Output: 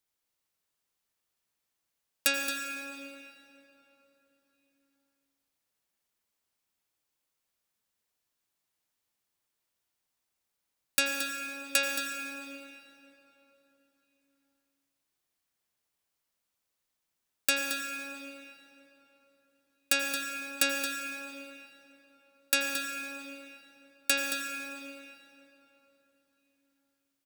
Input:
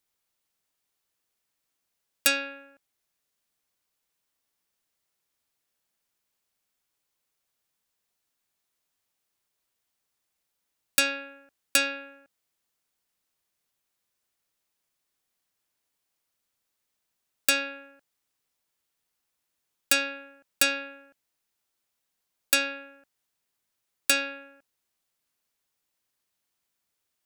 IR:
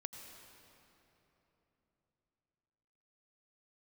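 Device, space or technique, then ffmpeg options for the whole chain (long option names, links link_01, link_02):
cave: -filter_complex "[0:a]aecho=1:1:223:0.355[link_01];[1:a]atrim=start_sample=2205[link_02];[link_01][link_02]afir=irnorm=-1:irlink=0"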